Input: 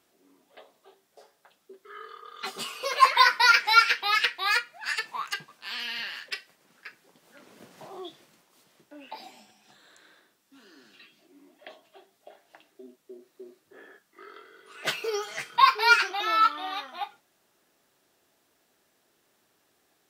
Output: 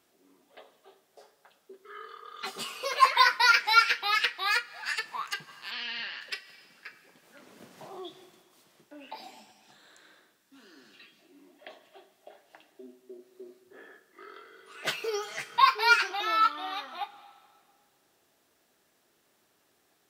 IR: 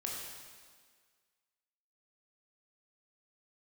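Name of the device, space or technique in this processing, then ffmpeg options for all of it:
ducked reverb: -filter_complex "[0:a]asplit=3[s0][s1][s2];[1:a]atrim=start_sample=2205[s3];[s1][s3]afir=irnorm=-1:irlink=0[s4];[s2]apad=whole_len=886108[s5];[s4][s5]sidechaincompress=threshold=0.00794:ratio=5:attack=12:release=167,volume=0.335[s6];[s0][s6]amix=inputs=2:normalize=0,asplit=3[s7][s8][s9];[s7]afade=t=out:st=5.7:d=0.02[s10];[s8]lowpass=f=5100:w=0.5412,lowpass=f=5100:w=1.3066,afade=t=in:st=5.7:d=0.02,afade=t=out:st=6.2:d=0.02[s11];[s9]afade=t=in:st=6.2:d=0.02[s12];[s10][s11][s12]amix=inputs=3:normalize=0,volume=0.75"

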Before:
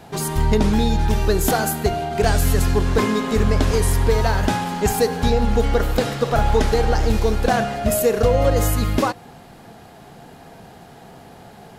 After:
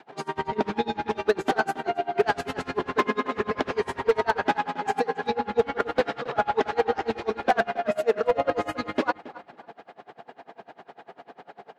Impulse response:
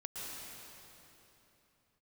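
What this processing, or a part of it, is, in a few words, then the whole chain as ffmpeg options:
helicopter radio: -filter_complex "[0:a]adynamicequalizer=threshold=0.02:dfrequency=560:dqfactor=4:tfrequency=560:tqfactor=4:attack=5:release=100:ratio=0.375:range=3:mode=cutabove:tftype=bell,highpass=390,lowpass=2500,aeval=exprs='val(0)*pow(10,-30*(0.5-0.5*cos(2*PI*10*n/s))/20)':c=same,asoftclip=type=hard:threshold=0.133,asplit=2[s0][s1];[s1]adelay=273,lowpass=f=3700:p=1,volume=0.126,asplit=2[s2][s3];[s3]adelay=273,lowpass=f=3700:p=1,volume=0.17[s4];[s0][s2][s4]amix=inputs=3:normalize=0,volume=1.78"

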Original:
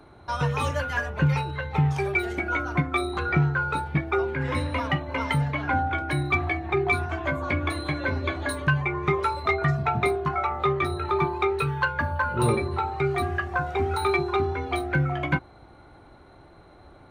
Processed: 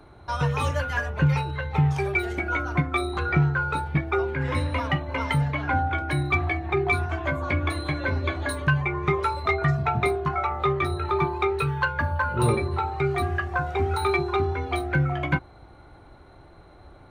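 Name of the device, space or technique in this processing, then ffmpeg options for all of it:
low shelf boost with a cut just above: -af "lowshelf=f=88:g=6,equalizer=f=230:t=o:w=0.77:g=-2"

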